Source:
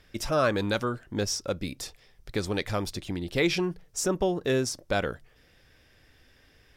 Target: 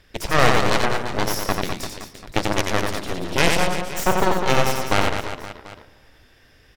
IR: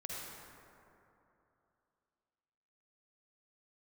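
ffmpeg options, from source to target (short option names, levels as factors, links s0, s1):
-filter_complex "[0:a]flanger=delay=1:depth=9.1:regen=-65:speed=1.5:shape=triangular,aeval=exprs='0.158*(cos(1*acos(clip(val(0)/0.158,-1,1)))-cos(1*PI/2))+0.0178*(cos(3*acos(clip(val(0)/0.158,-1,1)))-cos(3*PI/2))+0.0708*(cos(4*acos(clip(val(0)/0.158,-1,1)))-cos(4*PI/2))+0.0355*(cos(7*acos(clip(val(0)/0.158,-1,1)))-cos(7*PI/2))':c=same,aecho=1:1:90|202.5|343.1|518.9|738.6:0.631|0.398|0.251|0.158|0.1,asplit=2[s0][s1];[1:a]atrim=start_sample=2205[s2];[s1][s2]afir=irnorm=-1:irlink=0,volume=0.0794[s3];[s0][s3]amix=inputs=2:normalize=0,volume=2.51"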